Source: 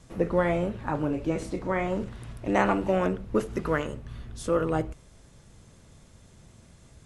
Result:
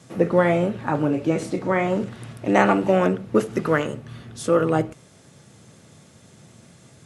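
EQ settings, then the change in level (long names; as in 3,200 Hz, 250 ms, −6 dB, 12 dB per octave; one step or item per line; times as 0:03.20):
high-pass filter 110 Hz 24 dB per octave
notch filter 1,000 Hz, Q 14
+6.5 dB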